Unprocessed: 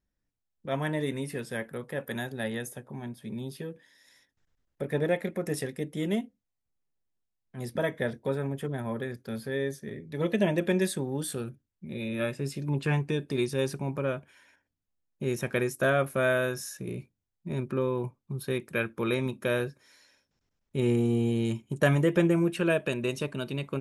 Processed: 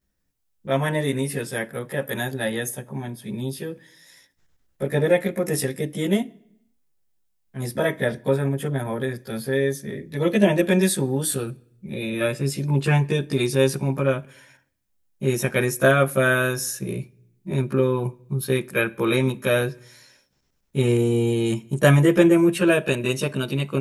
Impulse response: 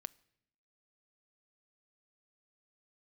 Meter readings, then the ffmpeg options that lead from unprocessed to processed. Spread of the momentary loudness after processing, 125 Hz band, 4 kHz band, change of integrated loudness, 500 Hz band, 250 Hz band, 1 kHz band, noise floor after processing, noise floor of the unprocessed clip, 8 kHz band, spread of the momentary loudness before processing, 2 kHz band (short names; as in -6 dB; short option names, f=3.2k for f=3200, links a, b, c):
13 LU, +8.0 dB, +8.5 dB, +7.5 dB, +7.5 dB, +7.0 dB, +7.5 dB, -70 dBFS, -83 dBFS, +11.5 dB, 13 LU, +7.5 dB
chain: -filter_complex "[0:a]highshelf=f=7.1k:g=7,asplit=2[a][b];[1:a]atrim=start_sample=2205,adelay=15[c];[b][c]afir=irnorm=-1:irlink=0,volume=10.5dB[d];[a][d]amix=inputs=2:normalize=0"